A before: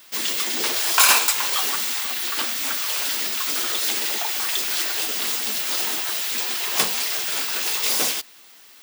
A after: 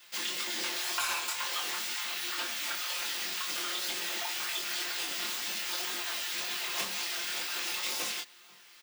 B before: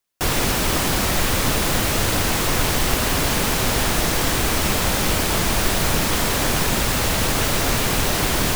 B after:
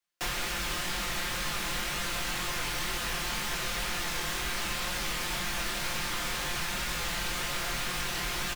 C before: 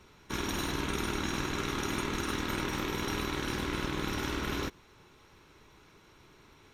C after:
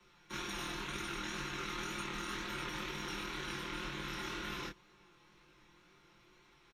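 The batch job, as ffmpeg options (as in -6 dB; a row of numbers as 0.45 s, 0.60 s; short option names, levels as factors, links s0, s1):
-filter_complex "[0:a]highshelf=f=6200:g=-9,aecho=1:1:5.7:0.9,asplit=2[s0][s1];[s1]adelay=1691,volume=0.0398,highshelf=f=4000:g=-38[s2];[s0][s2]amix=inputs=2:normalize=0,acrossover=split=170|1200[s3][s4][s5];[s5]acontrast=61[s6];[s3][s4][s6]amix=inputs=3:normalize=0,flanger=delay=20:depth=6:speed=2,acrossover=split=87|840[s7][s8][s9];[s7]acompressor=threshold=0.0398:ratio=4[s10];[s8]acompressor=threshold=0.02:ratio=4[s11];[s9]acompressor=threshold=0.0708:ratio=4[s12];[s10][s11][s12]amix=inputs=3:normalize=0,volume=0.376"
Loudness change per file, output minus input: -11.5 LU, -12.0 LU, -7.0 LU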